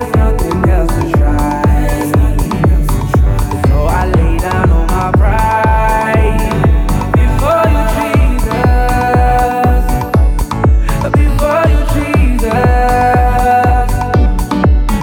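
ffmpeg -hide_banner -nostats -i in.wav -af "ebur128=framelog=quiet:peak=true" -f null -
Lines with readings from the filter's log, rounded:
Integrated loudness:
  I:         -11.9 LUFS
  Threshold: -21.9 LUFS
Loudness range:
  LRA:         1.3 LU
  Threshold: -31.9 LUFS
  LRA low:   -12.5 LUFS
  LRA high:  -11.2 LUFS
True peak:
  Peak:       -2.5 dBFS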